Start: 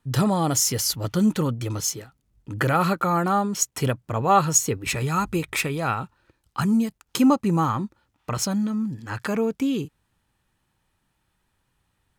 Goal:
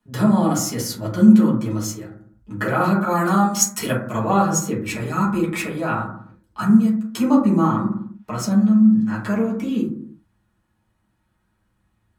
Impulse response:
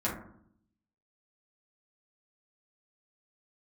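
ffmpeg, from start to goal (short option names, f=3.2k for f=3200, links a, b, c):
-filter_complex "[0:a]asplit=3[a][b][c];[a]afade=t=out:st=3.09:d=0.02[d];[b]highshelf=f=2.1k:g=11.5,afade=t=in:st=3.09:d=0.02,afade=t=out:st=4.23:d=0.02[e];[c]afade=t=in:st=4.23:d=0.02[f];[d][e][f]amix=inputs=3:normalize=0,acrossover=split=130|2600[g][h][i];[g]acompressor=threshold=-48dB:ratio=6[j];[j][h][i]amix=inputs=3:normalize=0[k];[1:a]atrim=start_sample=2205,afade=t=out:st=0.43:d=0.01,atrim=end_sample=19404[l];[k][l]afir=irnorm=-1:irlink=0,volume=-6dB"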